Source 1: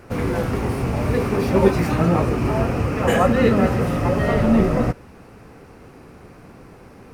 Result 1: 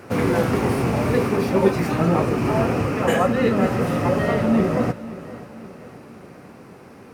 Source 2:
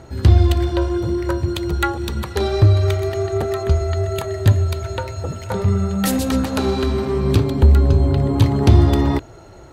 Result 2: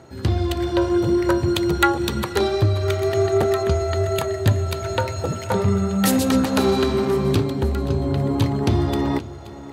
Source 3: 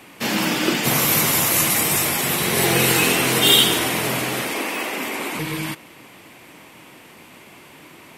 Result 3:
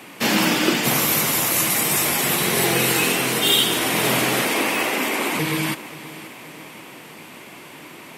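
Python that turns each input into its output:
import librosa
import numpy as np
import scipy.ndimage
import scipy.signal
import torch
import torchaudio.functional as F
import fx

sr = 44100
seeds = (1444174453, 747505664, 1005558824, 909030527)

p1 = fx.rider(x, sr, range_db=4, speed_s=0.5)
p2 = scipy.signal.sosfilt(scipy.signal.butter(2, 120.0, 'highpass', fs=sr, output='sos'), p1)
y = p2 + fx.echo_feedback(p2, sr, ms=528, feedback_pct=50, wet_db=-17.0, dry=0)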